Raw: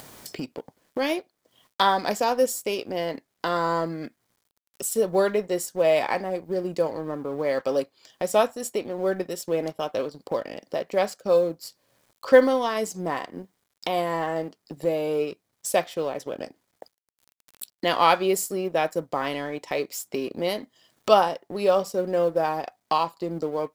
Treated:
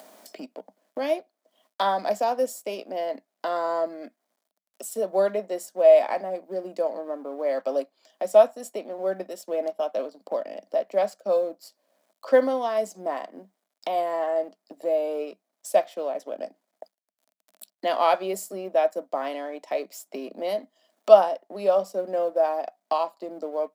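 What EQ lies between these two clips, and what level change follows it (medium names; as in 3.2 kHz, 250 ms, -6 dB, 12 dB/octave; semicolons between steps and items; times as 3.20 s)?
rippled Chebyshev high-pass 190 Hz, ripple 3 dB; peaking EQ 640 Hz +12 dB 0.35 oct; -5.0 dB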